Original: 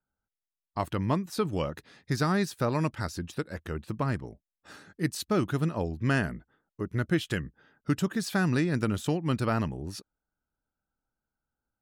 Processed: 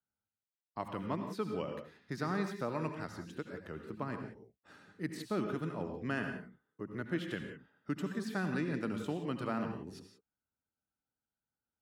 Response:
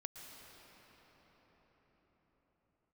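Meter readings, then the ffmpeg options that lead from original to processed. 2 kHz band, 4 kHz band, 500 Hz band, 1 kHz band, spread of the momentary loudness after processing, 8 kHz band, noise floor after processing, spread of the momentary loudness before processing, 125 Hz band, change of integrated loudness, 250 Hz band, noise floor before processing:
−8.0 dB, −11.0 dB, −7.0 dB, −7.5 dB, 12 LU, −15.0 dB, below −85 dBFS, 12 LU, −12.5 dB, −9.0 dB, −8.0 dB, below −85 dBFS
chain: -filter_complex "[0:a]highpass=79,bass=frequency=250:gain=2,treble=frequency=4000:gain=-8,acrossover=split=160|2800[link_01][link_02][link_03];[link_01]acompressor=threshold=-49dB:ratio=6[link_04];[link_04][link_02][link_03]amix=inputs=3:normalize=0[link_05];[1:a]atrim=start_sample=2205,afade=type=out:start_time=0.35:duration=0.01,atrim=end_sample=15876,asetrate=70560,aresample=44100[link_06];[link_05][link_06]afir=irnorm=-1:irlink=0,volume=1dB"

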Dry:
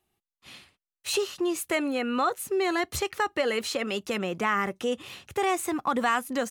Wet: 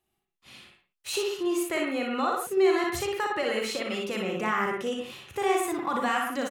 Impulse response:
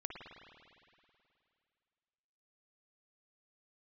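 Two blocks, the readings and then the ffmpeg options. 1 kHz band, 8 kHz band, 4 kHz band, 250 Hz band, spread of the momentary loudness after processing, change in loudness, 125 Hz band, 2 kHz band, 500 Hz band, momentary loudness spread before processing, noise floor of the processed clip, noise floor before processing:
−0.5 dB, −2.0 dB, −1.0 dB, 0.0 dB, 8 LU, 0.0 dB, −1.0 dB, −1.0 dB, +1.5 dB, 4 LU, −82 dBFS, below −85 dBFS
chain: -filter_complex "[0:a]aecho=1:1:37|60:0.376|0.631[link_01];[1:a]atrim=start_sample=2205,atrim=end_sample=6174[link_02];[link_01][link_02]afir=irnorm=-1:irlink=0"

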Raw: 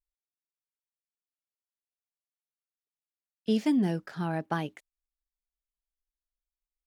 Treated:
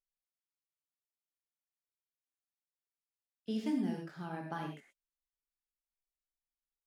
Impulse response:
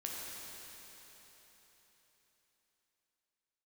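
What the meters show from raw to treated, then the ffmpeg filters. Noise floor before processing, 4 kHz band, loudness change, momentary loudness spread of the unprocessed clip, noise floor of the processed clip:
below −85 dBFS, −9.5 dB, −8.5 dB, 11 LU, below −85 dBFS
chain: -filter_complex "[1:a]atrim=start_sample=2205,atrim=end_sample=4410,asetrate=33075,aresample=44100[link_01];[0:a][link_01]afir=irnorm=-1:irlink=0,volume=-8.5dB"

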